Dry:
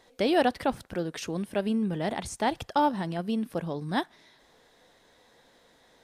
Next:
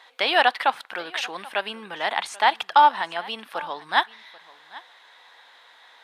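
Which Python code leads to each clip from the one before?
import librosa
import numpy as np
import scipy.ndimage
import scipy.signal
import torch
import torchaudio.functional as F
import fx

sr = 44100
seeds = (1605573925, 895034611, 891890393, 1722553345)

y = scipy.signal.sosfilt(scipy.signal.butter(2, 550.0, 'highpass', fs=sr, output='sos'), x)
y = fx.band_shelf(y, sr, hz=1800.0, db=12.5, octaves=2.7)
y = y + 10.0 ** (-21.0 / 20.0) * np.pad(y, (int(786 * sr / 1000.0), 0))[:len(y)]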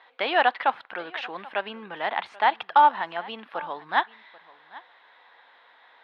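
y = fx.air_absorb(x, sr, metres=360.0)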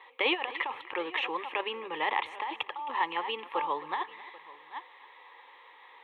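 y = fx.over_compress(x, sr, threshold_db=-27.0, ratio=-1.0)
y = fx.fixed_phaser(y, sr, hz=1000.0, stages=8)
y = fx.echo_feedback(y, sr, ms=266, feedback_pct=27, wet_db=-18.0)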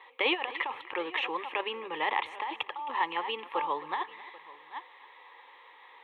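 y = x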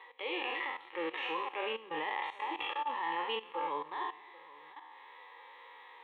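y = fx.spec_trails(x, sr, decay_s=0.58)
y = fx.level_steps(y, sr, step_db=18)
y = fx.hpss(y, sr, part='percussive', gain_db=-17)
y = y * 10.0 ** (3.5 / 20.0)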